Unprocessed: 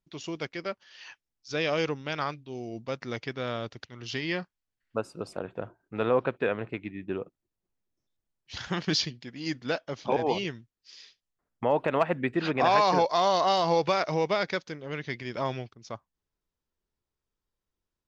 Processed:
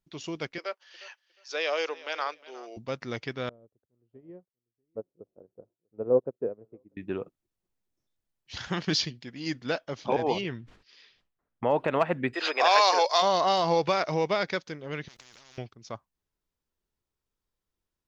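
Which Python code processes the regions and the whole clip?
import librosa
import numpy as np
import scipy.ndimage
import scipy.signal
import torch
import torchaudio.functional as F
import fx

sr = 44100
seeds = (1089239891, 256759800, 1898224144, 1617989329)

y = fx.chain(x, sr, fx.highpass(hz=440.0, slope=24),
    fx.echo_feedback(ms=358, feedback_pct=21, wet_db=-19.0), at=(0.58, 2.77))
y = fx.chain(y, sr, fx.lowpass_res(hz=480.0, q=1.7),
    fx.echo_single(ms=643, db=-18.5),
    fx.upward_expand(threshold_db=-37.0, expansion=2.5), at=(3.49, 6.97))
y = fx.chain(y, sr, fx.lowpass(hz=3000.0, slope=12),
    fx.sustainer(db_per_s=95.0), at=(10.41, 11.65))
y = fx.highpass(y, sr, hz=430.0, slope=24, at=(12.33, 13.21), fade=0.02)
y = fx.high_shelf(y, sr, hz=2600.0, db=11.0, at=(12.33, 13.21), fade=0.02)
y = fx.dmg_tone(y, sr, hz=5000.0, level_db=-47.0, at=(12.33, 13.21), fade=0.02)
y = fx.chain(y, sr, fx.low_shelf(hz=66.0, db=9.0),
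    fx.level_steps(step_db=23),
    fx.spectral_comp(ratio=10.0), at=(15.08, 15.58))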